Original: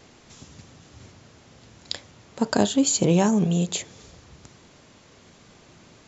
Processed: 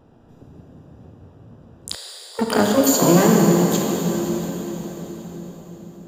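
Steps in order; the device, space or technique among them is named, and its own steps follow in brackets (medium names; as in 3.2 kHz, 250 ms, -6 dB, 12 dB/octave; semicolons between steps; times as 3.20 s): local Wiener filter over 41 samples; shimmer-style reverb (harmony voices +12 st -4 dB; reverberation RT60 4.9 s, pre-delay 18 ms, DRR -1 dB); 1.95–2.39 s: Chebyshev high-pass 390 Hz, order 6; trim +1 dB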